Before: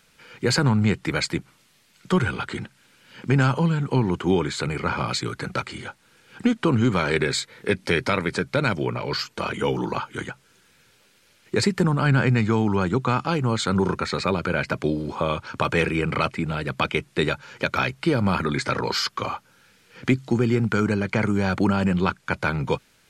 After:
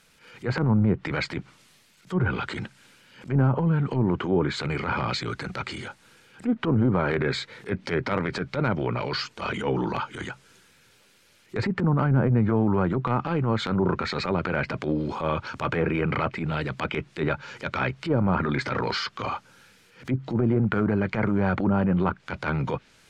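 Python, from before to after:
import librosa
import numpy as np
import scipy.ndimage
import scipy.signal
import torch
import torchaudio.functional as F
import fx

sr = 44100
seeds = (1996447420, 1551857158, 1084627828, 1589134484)

y = fx.env_lowpass_down(x, sr, base_hz=800.0, full_db=-15.5)
y = fx.transient(y, sr, attack_db=-12, sustain_db=3)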